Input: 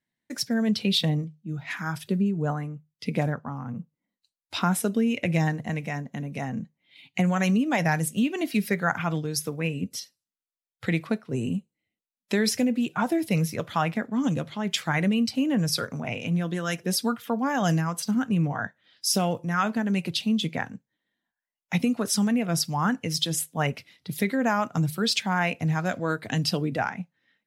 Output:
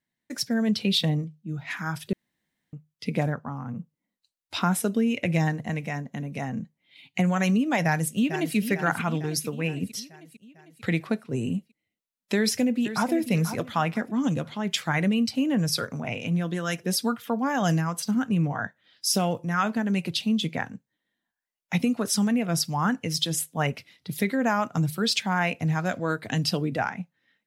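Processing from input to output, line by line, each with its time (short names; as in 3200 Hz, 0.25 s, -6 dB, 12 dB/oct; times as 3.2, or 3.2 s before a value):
2.13–2.73 room tone
7.84–8.56 echo throw 0.45 s, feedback 60%, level -9.5 dB
12.36–13.13 echo throw 0.49 s, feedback 30%, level -10.5 dB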